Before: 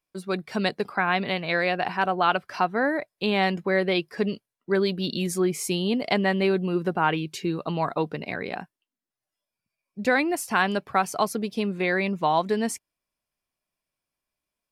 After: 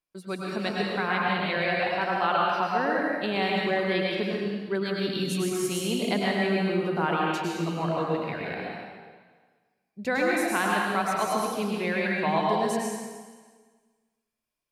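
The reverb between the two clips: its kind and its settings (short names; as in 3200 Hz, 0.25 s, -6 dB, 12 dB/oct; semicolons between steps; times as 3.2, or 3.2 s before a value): plate-style reverb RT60 1.5 s, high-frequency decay 0.95×, pre-delay 90 ms, DRR -3.5 dB; gain -6 dB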